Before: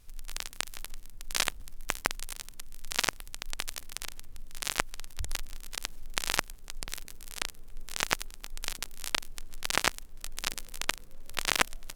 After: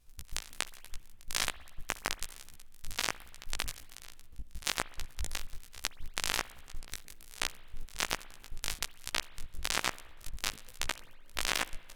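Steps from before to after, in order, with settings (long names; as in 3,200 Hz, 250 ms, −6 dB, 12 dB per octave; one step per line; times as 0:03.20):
output level in coarse steps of 17 dB
spring reverb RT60 1.3 s, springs 58 ms, chirp 30 ms, DRR 18 dB
chorus effect 1.2 Hz, delay 15 ms, depth 4.4 ms
level +6 dB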